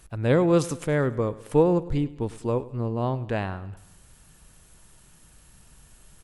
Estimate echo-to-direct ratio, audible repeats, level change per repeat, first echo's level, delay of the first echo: −17.5 dB, 3, −6.0 dB, −18.5 dB, 102 ms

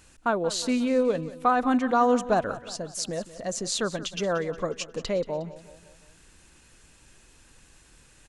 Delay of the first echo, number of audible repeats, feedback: 180 ms, 4, 50%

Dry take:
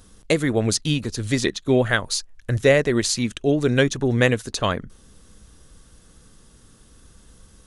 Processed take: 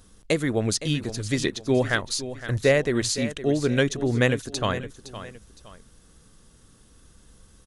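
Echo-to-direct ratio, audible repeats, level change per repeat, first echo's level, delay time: −12.5 dB, 2, −9.5 dB, −13.0 dB, 513 ms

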